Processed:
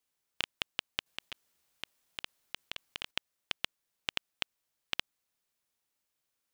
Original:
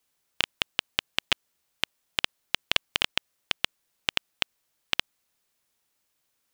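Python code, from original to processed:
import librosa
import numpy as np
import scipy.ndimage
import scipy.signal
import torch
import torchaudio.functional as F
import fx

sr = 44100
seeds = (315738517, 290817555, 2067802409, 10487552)

y = fx.over_compress(x, sr, threshold_db=-32.0, ratio=-1.0, at=(1.06, 3.11))
y = F.gain(torch.from_numpy(y), -8.0).numpy()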